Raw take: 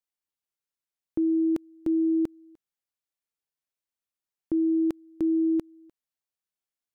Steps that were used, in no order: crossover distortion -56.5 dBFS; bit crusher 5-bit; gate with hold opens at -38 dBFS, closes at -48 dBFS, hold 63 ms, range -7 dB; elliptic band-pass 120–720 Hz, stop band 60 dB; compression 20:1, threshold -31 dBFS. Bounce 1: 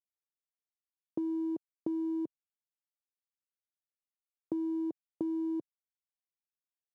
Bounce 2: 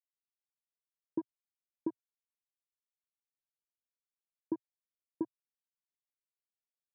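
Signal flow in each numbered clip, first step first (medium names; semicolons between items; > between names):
gate with hold > bit crusher > elliptic band-pass > crossover distortion > compression; crossover distortion > compression > bit crusher > gate with hold > elliptic band-pass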